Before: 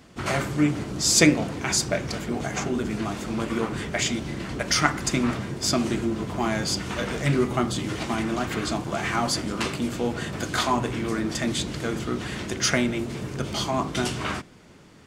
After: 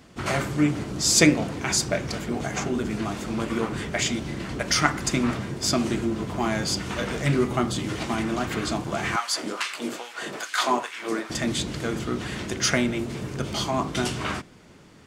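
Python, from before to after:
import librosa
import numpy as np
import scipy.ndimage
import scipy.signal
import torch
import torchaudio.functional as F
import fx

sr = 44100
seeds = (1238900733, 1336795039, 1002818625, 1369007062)

y = fx.filter_lfo_highpass(x, sr, shape='sine', hz=2.4, low_hz=300.0, high_hz=1800.0, q=1.2, at=(9.16, 11.3))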